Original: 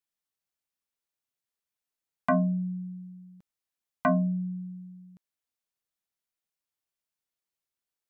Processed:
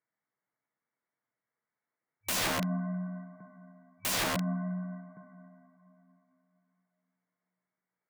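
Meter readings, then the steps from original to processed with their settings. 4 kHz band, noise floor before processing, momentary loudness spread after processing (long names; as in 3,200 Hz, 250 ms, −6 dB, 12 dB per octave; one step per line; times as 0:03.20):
can't be measured, below −85 dBFS, 16 LU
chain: coupled-rooms reverb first 0.69 s, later 3.3 s, from −17 dB, DRR 4.5 dB
dynamic equaliser 520 Hz, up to +6 dB, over −37 dBFS, Q 0.78
soft clipping −18.5 dBFS, distortion −11 dB
brick-wall band-pass 100–2,300 Hz
wrap-around overflow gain 31.5 dB
level +6.5 dB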